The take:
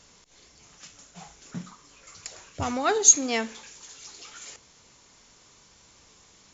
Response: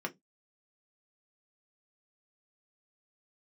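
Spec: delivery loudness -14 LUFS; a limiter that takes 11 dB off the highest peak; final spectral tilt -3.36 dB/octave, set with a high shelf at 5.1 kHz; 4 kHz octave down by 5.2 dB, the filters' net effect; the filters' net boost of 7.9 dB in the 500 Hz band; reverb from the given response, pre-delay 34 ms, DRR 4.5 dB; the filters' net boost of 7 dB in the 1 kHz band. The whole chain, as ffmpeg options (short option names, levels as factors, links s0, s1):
-filter_complex "[0:a]equalizer=f=500:t=o:g=8,equalizer=f=1000:t=o:g=7,equalizer=f=4000:t=o:g=-9,highshelf=f=5100:g=3.5,alimiter=limit=0.2:level=0:latency=1,asplit=2[s0][s1];[1:a]atrim=start_sample=2205,adelay=34[s2];[s1][s2]afir=irnorm=-1:irlink=0,volume=0.422[s3];[s0][s3]amix=inputs=2:normalize=0,volume=3.16"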